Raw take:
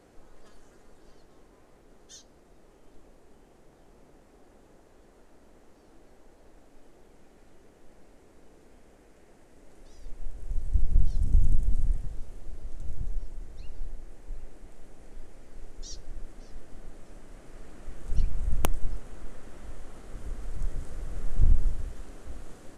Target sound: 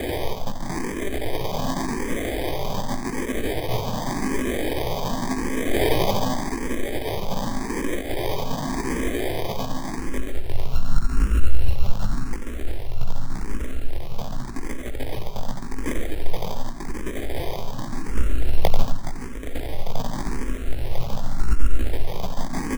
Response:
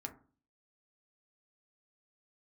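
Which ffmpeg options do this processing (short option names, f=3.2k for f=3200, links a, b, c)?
-filter_complex "[0:a]aeval=exprs='val(0)+0.5*0.0473*sgn(val(0))':c=same,aecho=1:1:90:0.398,asettb=1/sr,asplit=3[a][b][c];[a]atrim=end=5.664[d];[b]atrim=start=5.66:end=6.18,asetpts=PTS-STARTPTS,afade=t=in:d=0.004:c=qsin,afade=t=out:st=0.516:d=0.004:c=qsin,acontrast=37[e];[c]atrim=start=6.176[f];[d][e]acrossfade=d=0.004:c1=hsin:c2=qsin[g];[g][f]acrossfade=d=0.004:c1=qsin:c2=hsin,asplit=2[h][i];[1:a]atrim=start_sample=2205,adelay=140[j];[i][j]afir=irnorm=-1:irlink=0,volume=-1.5dB[k];[h][k]amix=inputs=2:normalize=0,afreqshift=-17,flanger=delay=15.5:depth=4.3:speed=2.7,acrusher=samples=32:mix=1:aa=0.000001,alimiter=level_in=13.5dB:limit=-1dB:release=50:level=0:latency=1,asplit=2[l][m];[m]afreqshift=0.87[n];[l][n]amix=inputs=2:normalize=1,volume=-2dB"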